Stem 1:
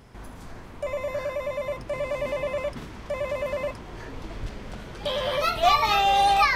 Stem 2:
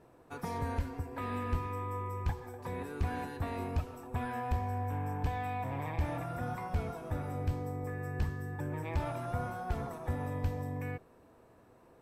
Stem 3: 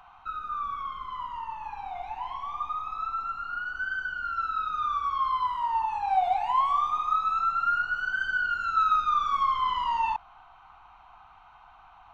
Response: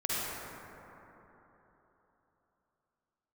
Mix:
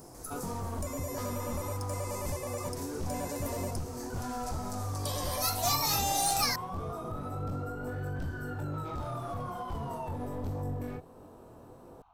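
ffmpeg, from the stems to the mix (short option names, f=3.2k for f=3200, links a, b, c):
-filter_complex "[0:a]aexciter=amount=15.7:drive=4.9:freq=4.9k,aeval=exprs='clip(val(0),-1,0.251)':c=same,volume=-12.5dB[a];[1:a]aeval=exprs='clip(val(0),-1,0.0112)':c=same,flanger=delay=20:depth=5.2:speed=1.6,aeval=exprs='0.0668*sin(PI/2*2.82*val(0)/0.0668)':c=same,volume=0dB[b];[2:a]volume=-7dB,asplit=3[c][d][e];[c]atrim=end=2.72,asetpts=PTS-STARTPTS,afade=t=out:st=2.716:d=0.004:c=hsin[f];[d]atrim=start=2.72:end=4.1,asetpts=PTS-STARTPTS,volume=0[g];[e]atrim=start=4.1,asetpts=PTS-STARTPTS,afade=t=in:d=0.004:c=hsin[h];[f][g][h]concat=n=3:v=0:a=1[i];[b][i]amix=inputs=2:normalize=0,equalizer=f=2.1k:w=0.97:g=-12.5,alimiter=level_in=5dB:limit=-24dB:level=0:latency=1:release=355,volume=-5dB,volume=0dB[j];[a][j]amix=inputs=2:normalize=0"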